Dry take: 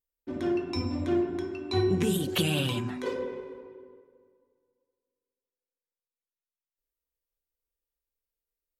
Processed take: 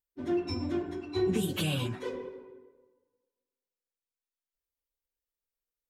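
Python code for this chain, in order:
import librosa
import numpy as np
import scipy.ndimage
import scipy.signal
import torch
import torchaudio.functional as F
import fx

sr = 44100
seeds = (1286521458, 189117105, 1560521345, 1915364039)

y = fx.stretch_vocoder_free(x, sr, factor=0.67)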